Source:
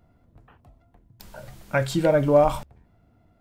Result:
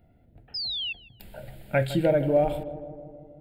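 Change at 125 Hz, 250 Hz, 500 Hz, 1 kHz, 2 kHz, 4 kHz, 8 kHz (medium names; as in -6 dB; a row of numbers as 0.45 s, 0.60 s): -2.0 dB, -2.5 dB, -3.0 dB, -6.5 dB, -2.5 dB, +10.0 dB, no reading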